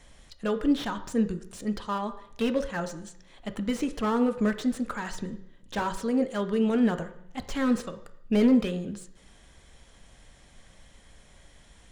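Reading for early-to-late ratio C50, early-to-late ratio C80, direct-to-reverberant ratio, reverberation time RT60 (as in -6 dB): 12.5 dB, 15.5 dB, 8.0 dB, 0.70 s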